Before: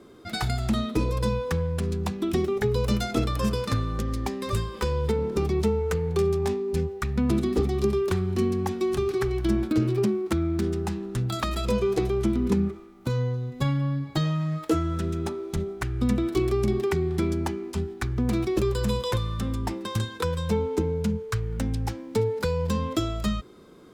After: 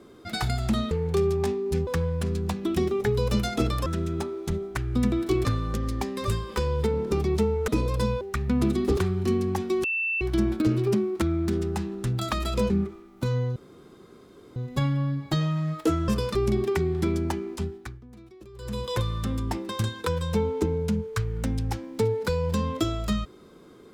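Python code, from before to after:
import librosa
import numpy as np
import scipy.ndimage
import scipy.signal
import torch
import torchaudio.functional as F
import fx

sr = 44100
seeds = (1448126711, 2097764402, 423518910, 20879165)

y = fx.edit(x, sr, fx.swap(start_s=0.91, length_s=0.53, other_s=5.93, other_length_s=0.96),
    fx.swap(start_s=3.43, length_s=0.27, other_s=14.92, other_length_s=1.59),
    fx.cut(start_s=7.65, length_s=0.43),
    fx.bleep(start_s=8.95, length_s=0.37, hz=2670.0, db=-24.0),
    fx.cut(start_s=11.81, length_s=0.73),
    fx.insert_room_tone(at_s=13.4, length_s=1.0),
    fx.fade_down_up(start_s=17.69, length_s=1.49, db=-23.0, fade_s=0.49), tone=tone)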